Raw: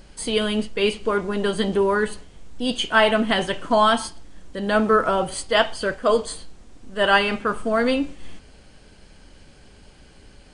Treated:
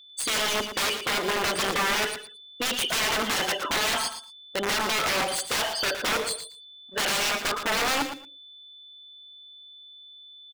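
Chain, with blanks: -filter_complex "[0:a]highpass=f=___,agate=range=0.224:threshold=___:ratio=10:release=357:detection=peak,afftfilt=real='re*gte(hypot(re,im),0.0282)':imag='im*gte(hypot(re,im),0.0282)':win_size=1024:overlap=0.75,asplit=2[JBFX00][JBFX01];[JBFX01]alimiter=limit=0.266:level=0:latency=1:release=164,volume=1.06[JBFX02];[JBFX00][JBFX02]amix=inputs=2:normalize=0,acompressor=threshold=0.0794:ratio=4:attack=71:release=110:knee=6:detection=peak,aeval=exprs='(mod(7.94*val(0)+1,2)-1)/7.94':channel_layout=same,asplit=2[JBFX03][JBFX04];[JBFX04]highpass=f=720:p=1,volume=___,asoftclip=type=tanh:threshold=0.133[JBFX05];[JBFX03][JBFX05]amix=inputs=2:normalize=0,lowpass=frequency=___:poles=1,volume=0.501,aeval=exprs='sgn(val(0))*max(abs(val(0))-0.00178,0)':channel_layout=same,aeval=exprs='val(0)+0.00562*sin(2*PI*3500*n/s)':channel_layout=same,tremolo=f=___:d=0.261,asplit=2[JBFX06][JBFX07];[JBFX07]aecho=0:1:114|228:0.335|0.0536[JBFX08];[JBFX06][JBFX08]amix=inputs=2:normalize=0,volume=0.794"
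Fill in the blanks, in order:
310, 0.00316, 5.01, 6.6k, 150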